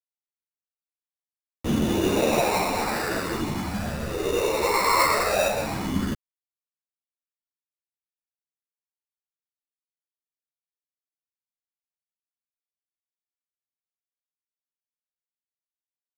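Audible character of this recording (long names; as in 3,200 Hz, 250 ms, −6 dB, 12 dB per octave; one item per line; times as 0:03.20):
a quantiser's noise floor 6 bits, dither none
phaser sweep stages 8, 0.16 Hz, lowest notch 210–3,300 Hz
aliases and images of a low sample rate 3,200 Hz, jitter 0%
a shimmering, thickened sound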